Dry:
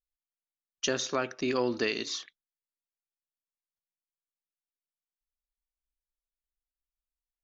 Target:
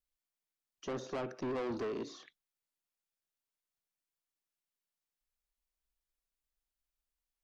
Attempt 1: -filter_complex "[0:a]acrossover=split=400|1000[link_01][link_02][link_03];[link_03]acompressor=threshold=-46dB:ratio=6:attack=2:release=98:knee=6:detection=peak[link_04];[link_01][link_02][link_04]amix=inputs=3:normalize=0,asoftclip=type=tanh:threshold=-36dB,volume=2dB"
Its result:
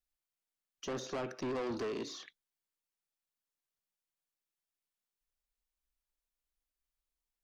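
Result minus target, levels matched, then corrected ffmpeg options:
downward compressor: peak gain reduction −7 dB
-filter_complex "[0:a]acrossover=split=400|1000[link_01][link_02][link_03];[link_03]acompressor=threshold=-54.5dB:ratio=6:attack=2:release=98:knee=6:detection=peak[link_04];[link_01][link_02][link_04]amix=inputs=3:normalize=0,asoftclip=type=tanh:threshold=-36dB,volume=2dB"

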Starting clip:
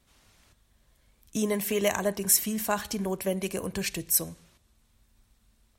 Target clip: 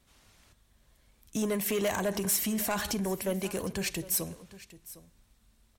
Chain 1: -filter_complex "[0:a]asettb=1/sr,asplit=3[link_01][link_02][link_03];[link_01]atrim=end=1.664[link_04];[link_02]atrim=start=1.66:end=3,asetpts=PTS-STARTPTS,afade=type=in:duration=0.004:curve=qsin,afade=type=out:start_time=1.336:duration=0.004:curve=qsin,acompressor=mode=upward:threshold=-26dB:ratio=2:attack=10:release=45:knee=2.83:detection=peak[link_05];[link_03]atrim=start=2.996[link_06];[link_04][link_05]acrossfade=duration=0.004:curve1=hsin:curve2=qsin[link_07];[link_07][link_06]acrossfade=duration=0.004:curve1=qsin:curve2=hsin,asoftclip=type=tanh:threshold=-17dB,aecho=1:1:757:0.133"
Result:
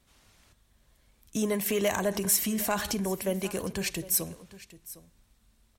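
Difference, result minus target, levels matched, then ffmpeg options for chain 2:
soft clipping: distortion −6 dB
-filter_complex "[0:a]asettb=1/sr,asplit=3[link_01][link_02][link_03];[link_01]atrim=end=1.664[link_04];[link_02]atrim=start=1.66:end=3,asetpts=PTS-STARTPTS,afade=type=in:duration=0.004:curve=qsin,afade=type=out:start_time=1.336:duration=0.004:curve=qsin,acompressor=mode=upward:threshold=-26dB:ratio=2:attack=10:release=45:knee=2.83:detection=peak[link_05];[link_03]atrim=start=2.996[link_06];[link_04][link_05]acrossfade=duration=0.004:curve1=hsin:curve2=qsin[link_07];[link_07][link_06]acrossfade=duration=0.004:curve1=qsin:curve2=hsin,asoftclip=type=tanh:threshold=-23.5dB,aecho=1:1:757:0.133"

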